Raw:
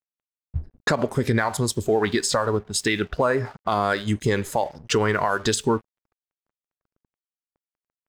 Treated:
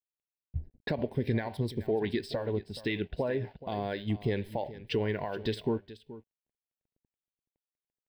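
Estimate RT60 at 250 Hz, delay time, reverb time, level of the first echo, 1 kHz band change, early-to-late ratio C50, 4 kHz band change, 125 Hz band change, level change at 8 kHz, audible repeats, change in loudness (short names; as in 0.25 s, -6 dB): none, 0.426 s, none, -16.0 dB, -15.5 dB, none, -12.5 dB, -7.0 dB, under -30 dB, 1, -10.0 dB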